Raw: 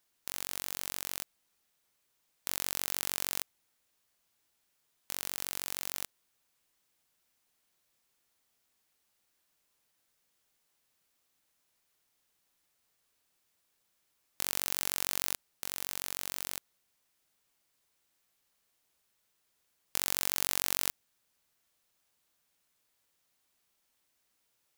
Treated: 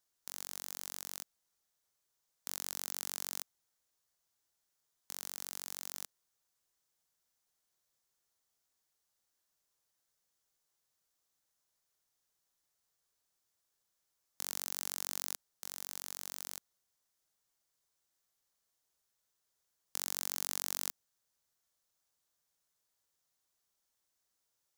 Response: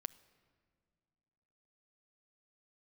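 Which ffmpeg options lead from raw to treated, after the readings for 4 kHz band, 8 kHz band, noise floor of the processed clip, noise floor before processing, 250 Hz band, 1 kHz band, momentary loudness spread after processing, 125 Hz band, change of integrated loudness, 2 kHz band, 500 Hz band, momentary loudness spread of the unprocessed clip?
-6.5 dB, -4.5 dB, -83 dBFS, -77 dBFS, -9.5 dB, -7.0 dB, 11 LU, -7.0 dB, -6.0 dB, -9.5 dB, -7.0 dB, 11 LU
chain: -af "equalizer=f=250:t=o:w=0.67:g=-5,equalizer=f=2500:t=o:w=0.67:g=-6,equalizer=f=6300:t=o:w=0.67:g=4,volume=0.473"

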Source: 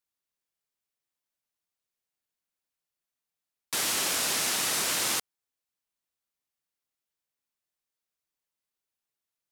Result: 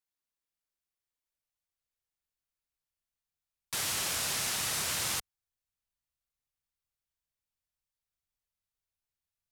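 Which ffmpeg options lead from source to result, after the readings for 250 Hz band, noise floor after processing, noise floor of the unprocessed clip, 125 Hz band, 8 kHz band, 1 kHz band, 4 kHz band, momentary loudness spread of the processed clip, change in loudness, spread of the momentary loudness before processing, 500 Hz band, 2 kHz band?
-6.5 dB, under -85 dBFS, under -85 dBFS, +2.5 dB, -4.5 dB, -5.0 dB, -4.5 dB, 4 LU, -4.5 dB, 4 LU, -6.5 dB, -4.5 dB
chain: -af "asubboost=boost=8.5:cutoff=100,volume=0.596"

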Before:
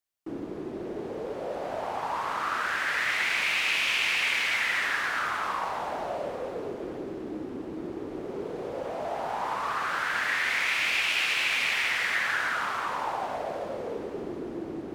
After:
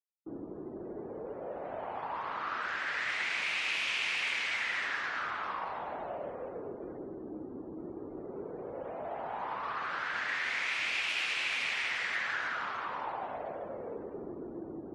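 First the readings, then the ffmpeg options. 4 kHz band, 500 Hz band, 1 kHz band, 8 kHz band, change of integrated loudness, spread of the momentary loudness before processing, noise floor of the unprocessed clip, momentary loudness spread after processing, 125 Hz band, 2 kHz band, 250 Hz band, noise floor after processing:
-6.5 dB, -6.5 dB, -6.5 dB, -9.5 dB, -6.5 dB, 13 LU, -38 dBFS, 13 LU, -6.5 dB, -6.5 dB, -6.5 dB, -45 dBFS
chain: -af "afftdn=nr=27:nf=-48,volume=0.473"

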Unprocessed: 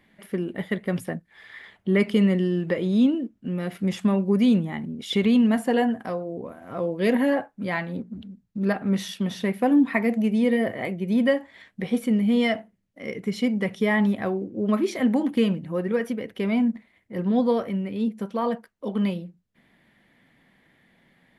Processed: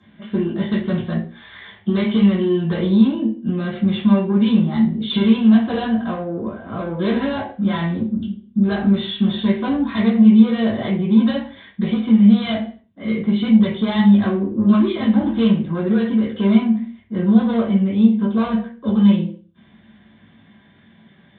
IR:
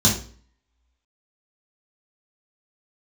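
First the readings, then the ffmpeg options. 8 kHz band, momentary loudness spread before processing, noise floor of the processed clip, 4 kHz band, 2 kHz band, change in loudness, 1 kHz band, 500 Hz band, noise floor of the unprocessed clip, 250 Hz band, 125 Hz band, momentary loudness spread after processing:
no reading, 13 LU, -52 dBFS, +6.5 dB, -0.5 dB, +6.5 dB, +3.0 dB, +1.0 dB, -66 dBFS, +8.0 dB, +8.5 dB, 12 LU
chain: -filter_complex "[0:a]lowshelf=f=370:g=-9,acrossover=split=450[s0][s1];[s0]acompressor=threshold=0.0282:ratio=6[s2];[s2][s1]amix=inputs=2:normalize=0,aresample=8000,asoftclip=type=tanh:threshold=0.0355,aresample=44100[s3];[1:a]atrim=start_sample=2205,afade=t=out:st=0.35:d=0.01,atrim=end_sample=15876[s4];[s3][s4]afir=irnorm=-1:irlink=0,volume=0.422"

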